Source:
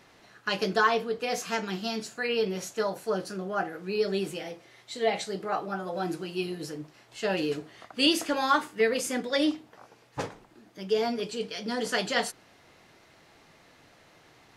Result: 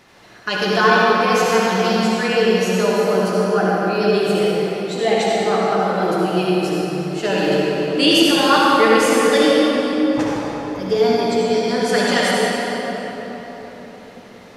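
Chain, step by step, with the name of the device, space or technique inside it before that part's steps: 10.21–12.01 s: band-stop 2.9 kHz, Q 5.4; cathedral (reverberation RT60 4.4 s, pre-delay 57 ms, DRR -5.5 dB); trim +6 dB

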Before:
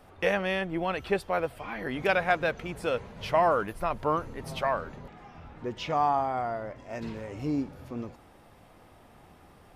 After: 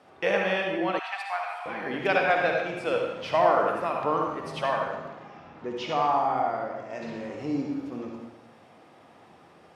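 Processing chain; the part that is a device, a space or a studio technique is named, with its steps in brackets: supermarket ceiling speaker (band-pass 200–6900 Hz; reverberation RT60 1.0 s, pre-delay 52 ms, DRR 0.5 dB); 0.99–1.66 s: Chebyshev high-pass 700 Hz, order 6

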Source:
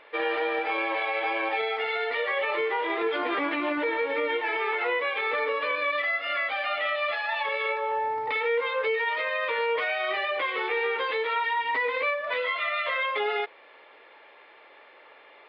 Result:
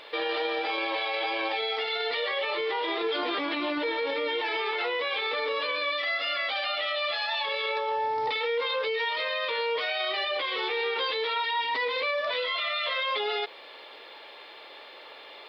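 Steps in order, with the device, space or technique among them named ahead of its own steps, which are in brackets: over-bright horn tweeter (resonant high shelf 3 kHz +11.5 dB, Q 1.5; peak limiter -27 dBFS, peak gain reduction 9.5 dB); trim +5.5 dB

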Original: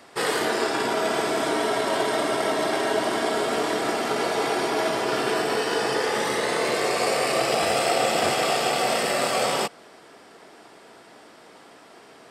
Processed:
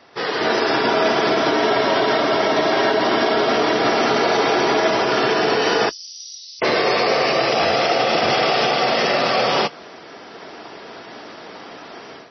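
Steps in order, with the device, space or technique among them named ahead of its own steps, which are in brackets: 5.89–6.62 s: inverse Chebyshev high-pass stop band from 1.8 kHz, stop band 60 dB; low-bitrate web radio (level rider gain up to 12 dB; peak limiter -8 dBFS, peak gain reduction 6 dB; MP3 24 kbps 24 kHz)

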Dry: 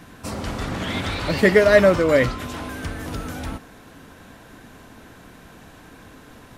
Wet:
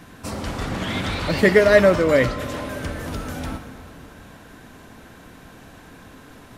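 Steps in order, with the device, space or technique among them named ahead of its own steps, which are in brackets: compressed reverb return (on a send at -8.5 dB: reverberation RT60 2.5 s, pre-delay 57 ms + compression, threshold -20 dBFS, peak gain reduction 11 dB)

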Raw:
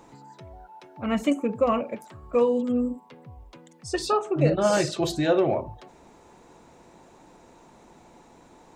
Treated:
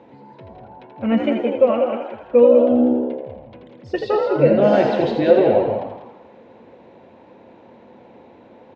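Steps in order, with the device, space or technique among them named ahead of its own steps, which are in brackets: 1.21–2.30 s: bass shelf 280 Hz -10.5 dB; delay 195 ms -7.5 dB; frequency-shifting delay pedal into a guitar cabinet (frequency-shifting echo 82 ms, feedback 58%, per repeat +69 Hz, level -6.5 dB; cabinet simulation 97–3400 Hz, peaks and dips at 98 Hz +6 dB, 160 Hz -4 dB, 230 Hz +7 dB, 520 Hz +9 dB, 1.2 kHz -8 dB); trim +2.5 dB

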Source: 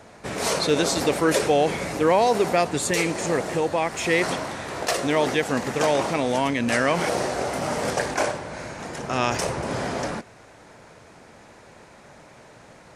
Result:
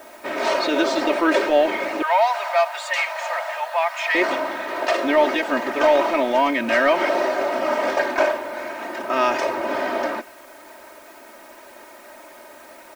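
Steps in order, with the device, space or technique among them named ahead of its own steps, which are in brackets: tape answering machine (band-pass 370–2900 Hz; saturation -12.5 dBFS, distortion -20 dB; wow and flutter; white noise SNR 31 dB); 2.02–4.15 s: steep high-pass 640 Hz 48 dB/octave; comb 3.2 ms, depth 90%; trim +3.5 dB

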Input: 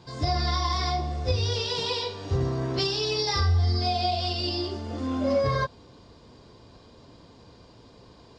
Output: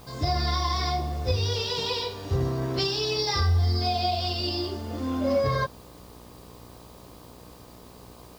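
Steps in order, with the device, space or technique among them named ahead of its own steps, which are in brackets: video cassette with head-switching buzz (mains buzz 60 Hz, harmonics 21, -50 dBFS -3 dB/octave; white noise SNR 29 dB)

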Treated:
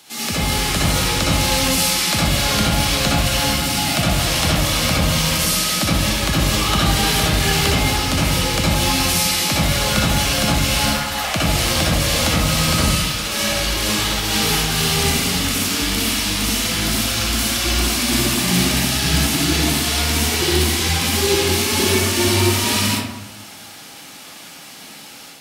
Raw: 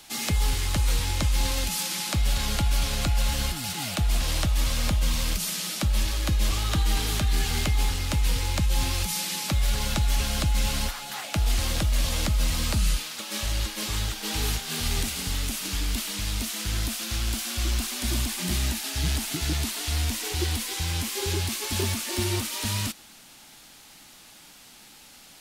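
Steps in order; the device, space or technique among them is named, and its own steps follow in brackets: far laptop microphone (reverberation RT60 0.90 s, pre-delay 58 ms, DRR -6 dB; high-pass 130 Hz 12 dB/octave; level rider gain up to 5 dB); trim +1.5 dB

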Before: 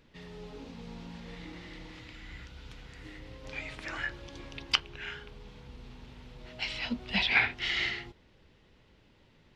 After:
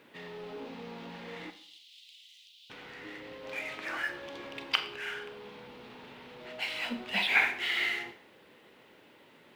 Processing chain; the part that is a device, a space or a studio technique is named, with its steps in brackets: phone line with mismatched companding (band-pass 310–3300 Hz; companding laws mixed up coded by mu); 1.50–2.70 s: steep high-pass 3 kHz 48 dB/octave; Schroeder reverb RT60 0.52 s, combs from 30 ms, DRR 9 dB

